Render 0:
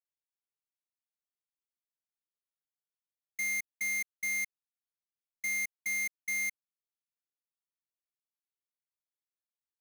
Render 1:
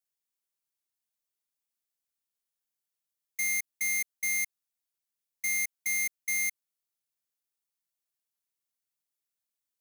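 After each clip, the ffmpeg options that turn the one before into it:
-af "highshelf=f=4.5k:g=9"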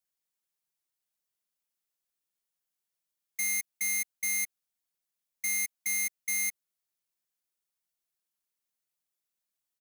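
-af "aecho=1:1:5.5:0.4"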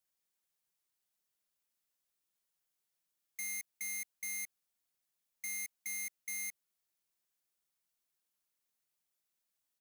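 -af "alimiter=level_in=7.5dB:limit=-24dB:level=0:latency=1:release=13,volume=-7.5dB,volume=1dB"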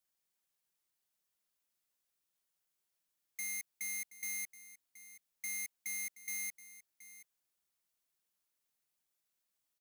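-af "aecho=1:1:725:0.158"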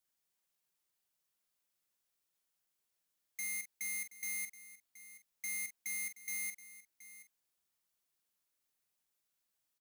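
-filter_complex "[0:a]asplit=2[a][b];[b]adelay=44,volume=-9.5dB[c];[a][c]amix=inputs=2:normalize=0"

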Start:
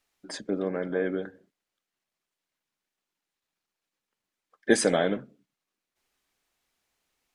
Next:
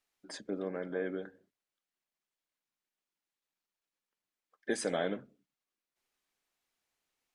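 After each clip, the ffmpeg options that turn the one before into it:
-af "lowshelf=f=170:g=-4,bandreject=f=50:t=h:w=6,bandreject=f=100:t=h:w=6,alimiter=limit=-13dB:level=0:latency=1:release=330,volume=-7dB"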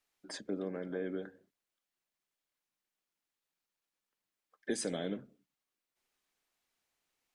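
-filter_complex "[0:a]acrossover=split=410|3000[a][b][c];[b]acompressor=threshold=-44dB:ratio=6[d];[a][d][c]amix=inputs=3:normalize=0,volume=1dB"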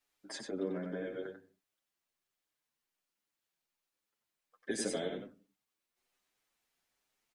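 -filter_complex "[0:a]aecho=1:1:93:0.501,asplit=2[a][b];[b]adelay=7.8,afreqshift=1.3[c];[a][c]amix=inputs=2:normalize=1,volume=3dB"

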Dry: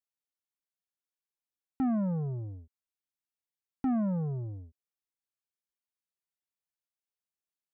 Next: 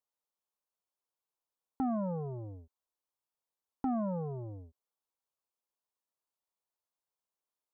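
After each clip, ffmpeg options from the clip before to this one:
-filter_complex "[0:a]equalizer=f=125:t=o:w=1:g=-4,equalizer=f=500:t=o:w=1:g=6,equalizer=f=1k:t=o:w=1:g=10,equalizer=f=2k:t=o:w=1:g=-8,asplit=2[a][b];[b]acompressor=threshold=-36dB:ratio=6,volume=-1.5dB[c];[a][c]amix=inputs=2:normalize=0,volume=-7dB"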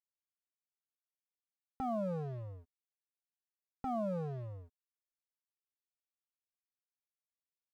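-af "aecho=1:1:1.6:0.93,aeval=exprs='sgn(val(0))*max(abs(val(0))-0.00237,0)':c=same,volume=-3.5dB"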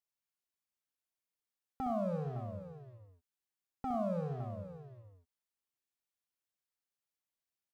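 -af "aecho=1:1:63|101|469|560:0.447|0.299|0.141|0.237"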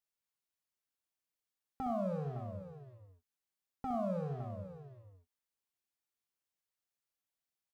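-filter_complex "[0:a]asplit=2[a][b];[b]adelay=21,volume=-14dB[c];[a][c]amix=inputs=2:normalize=0,volume=-1dB"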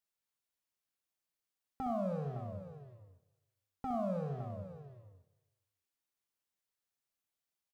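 -af "aecho=1:1:154|308|462|616:0.1|0.051|0.026|0.0133"

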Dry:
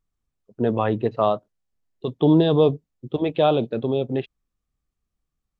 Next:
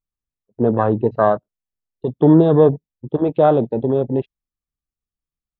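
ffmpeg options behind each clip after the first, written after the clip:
-af "afwtdn=0.0316,volume=5dB"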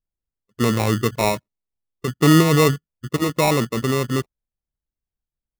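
-af "lowshelf=f=300:g=11,acrusher=samples=28:mix=1:aa=0.000001,volume=-8dB"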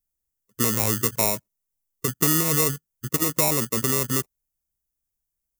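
-filter_complex "[0:a]acrossover=split=820|2300[a][b][c];[a]acompressor=threshold=-23dB:ratio=4[d];[b]acompressor=threshold=-32dB:ratio=4[e];[c]acompressor=threshold=-28dB:ratio=4[f];[d][e][f]amix=inputs=3:normalize=0,acrossover=split=870[g][h];[h]aexciter=amount=4.5:drive=4.3:freq=5.6k[i];[g][i]amix=inputs=2:normalize=0,volume=-1dB"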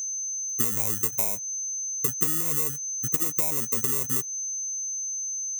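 -af "aeval=exprs='val(0)+0.0398*sin(2*PI*6200*n/s)':c=same,aexciter=amount=2.8:drive=4.8:freq=6.9k,acompressor=threshold=-16dB:ratio=6,volume=-4dB"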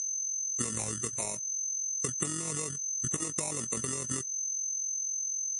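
-filter_complex "[0:a]tremolo=f=44:d=0.571,asplit=2[a][b];[b]volume=10.5dB,asoftclip=hard,volume=-10.5dB,volume=-10.5dB[c];[a][c]amix=inputs=2:normalize=0,volume=-1.5dB" -ar 24000 -c:a libmp3lame -b:a 40k

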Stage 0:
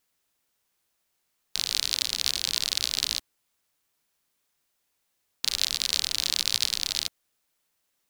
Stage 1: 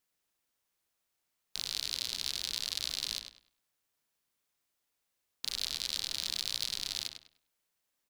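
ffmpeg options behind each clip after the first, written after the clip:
-filter_complex "[0:a]asoftclip=type=tanh:threshold=-8dB,asplit=2[a][b];[b]adelay=100,lowpass=f=4.2k:p=1,volume=-6.5dB,asplit=2[c][d];[d]adelay=100,lowpass=f=4.2k:p=1,volume=0.29,asplit=2[e][f];[f]adelay=100,lowpass=f=4.2k:p=1,volume=0.29,asplit=2[g][h];[h]adelay=100,lowpass=f=4.2k:p=1,volume=0.29[i];[a][c][e][g][i]amix=inputs=5:normalize=0,volume=-7dB"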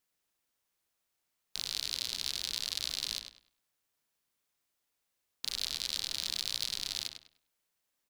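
-af anull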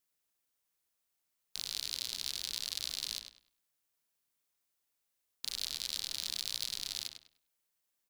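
-af "highshelf=f=6.5k:g=6,volume=-4.5dB"

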